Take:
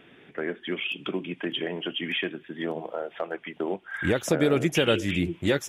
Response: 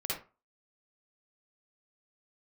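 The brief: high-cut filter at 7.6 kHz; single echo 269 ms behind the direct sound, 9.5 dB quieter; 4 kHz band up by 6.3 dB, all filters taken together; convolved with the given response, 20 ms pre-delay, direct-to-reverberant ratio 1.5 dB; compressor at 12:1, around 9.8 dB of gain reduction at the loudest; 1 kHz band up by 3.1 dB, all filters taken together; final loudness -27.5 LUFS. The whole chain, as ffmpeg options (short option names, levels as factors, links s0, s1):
-filter_complex "[0:a]lowpass=7600,equalizer=f=1000:t=o:g=4,equalizer=f=4000:t=o:g=9,acompressor=threshold=0.0501:ratio=12,aecho=1:1:269:0.335,asplit=2[s0][s1];[1:a]atrim=start_sample=2205,adelay=20[s2];[s1][s2]afir=irnorm=-1:irlink=0,volume=0.531[s3];[s0][s3]amix=inputs=2:normalize=0,volume=1.12"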